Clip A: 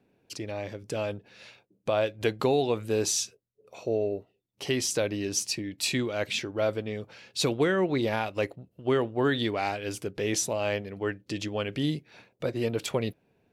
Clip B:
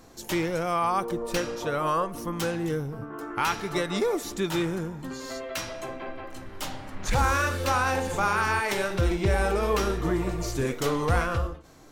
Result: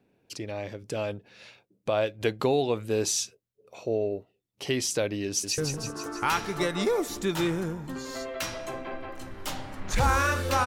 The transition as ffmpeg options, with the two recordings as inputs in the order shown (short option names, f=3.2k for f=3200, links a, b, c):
-filter_complex "[0:a]apad=whole_dur=10.66,atrim=end=10.66,atrim=end=5.582[a];[1:a]atrim=start=2.728:end=7.81[b];[a][b]acrossfade=d=0.004:c1=hsin:c2=hsin,asplit=2[c][d];[d]afade=t=in:st=5.27:d=0.01,afade=t=out:st=5.58:d=0.01,aecho=0:1:160|320|480|640|800|960|1120|1280|1440|1600:0.562341|0.365522|0.237589|0.154433|0.100381|0.0652479|0.0424112|0.0275673|0.0179187|0.0116472[e];[c][e]amix=inputs=2:normalize=0"